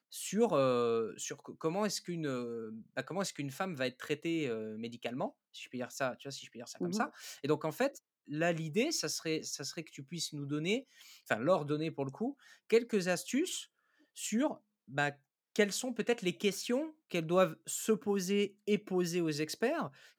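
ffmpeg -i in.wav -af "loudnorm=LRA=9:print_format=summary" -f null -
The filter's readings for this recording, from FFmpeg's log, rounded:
Input Integrated:    -34.9 LUFS
Input True Peak:     -14.7 dBTP
Input LRA:             4.8 LU
Input Threshold:     -45.2 LUFS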